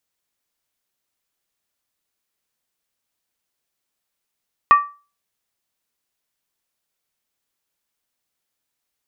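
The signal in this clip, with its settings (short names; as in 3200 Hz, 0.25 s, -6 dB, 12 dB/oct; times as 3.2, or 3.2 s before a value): skin hit, lowest mode 1160 Hz, decay 0.33 s, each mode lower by 11 dB, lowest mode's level -4 dB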